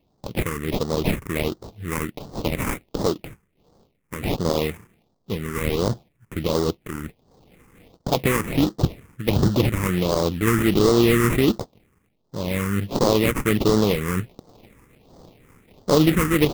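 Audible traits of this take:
aliases and images of a low sample rate 1,600 Hz, jitter 20%
phaser sweep stages 4, 1.4 Hz, lowest notch 650–2,400 Hz

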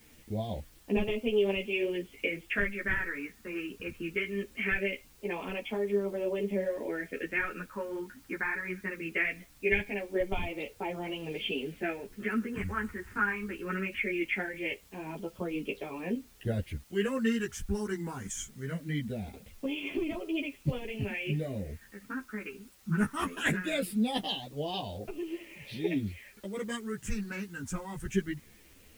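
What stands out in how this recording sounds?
phaser sweep stages 4, 0.21 Hz, lowest notch 610–1,600 Hz
a quantiser's noise floor 10 bits, dither triangular
a shimmering, thickened sound

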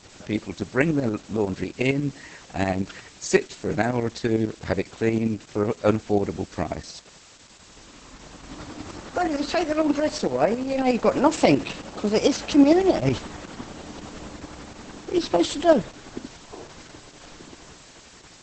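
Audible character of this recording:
tremolo saw up 11 Hz, depth 60%
a quantiser's noise floor 8 bits, dither triangular
Opus

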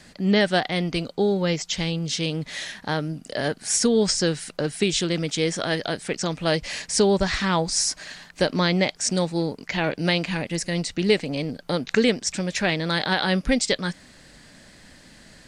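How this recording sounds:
background noise floor −50 dBFS
spectral slope −4.0 dB per octave

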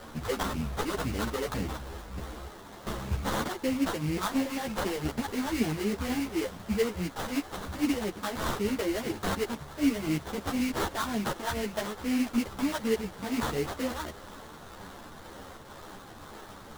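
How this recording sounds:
a quantiser's noise floor 8 bits, dither triangular
phaser sweep stages 4, 2 Hz, lowest notch 120–1,500 Hz
aliases and images of a low sample rate 2,500 Hz, jitter 20%
a shimmering, thickened sound

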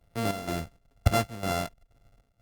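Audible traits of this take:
a buzz of ramps at a fixed pitch in blocks of 64 samples
chopped level 2.1 Hz, depth 65%, duty 65%
Opus

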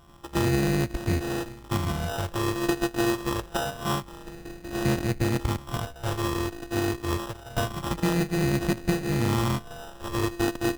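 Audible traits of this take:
a buzz of ramps at a fixed pitch in blocks of 128 samples
phaser sweep stages 8, 0.26 Hz, lowest notch 160–1,200 Hz
aliases and images of a low sample rate 2,200 Hz, jitter 0%

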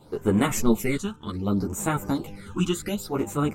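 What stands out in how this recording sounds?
phaser sweep stages 8, 0.67 Hz, lowest notch 600–4,900 Hz
tremolo triangle 0.59 Hz, depth 55%
a shimmering, thickened sound

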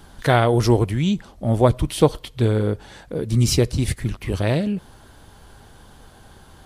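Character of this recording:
background noise floor −48 dBFS
spectral slope −6.0 dB per octave

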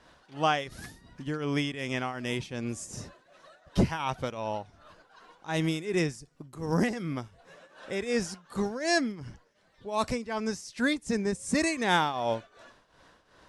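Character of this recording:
tremolo triangle 2.7 Hz, depth 80%

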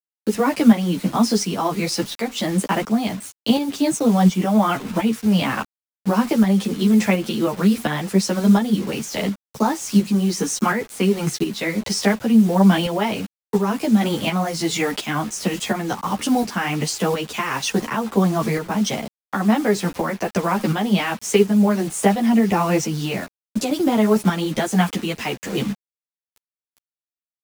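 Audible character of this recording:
a quantiser's noise floor 6 bits, dither none
tremolo saw up 1.4 Hz, depth 50%
a shimmering, thickened sound

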